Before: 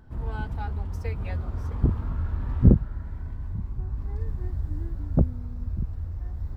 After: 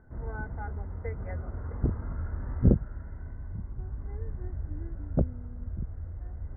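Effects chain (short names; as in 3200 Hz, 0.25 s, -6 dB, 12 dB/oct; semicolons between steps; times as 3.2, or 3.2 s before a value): rippled Chebyshev low-pass 2100 Hz, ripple 6 dB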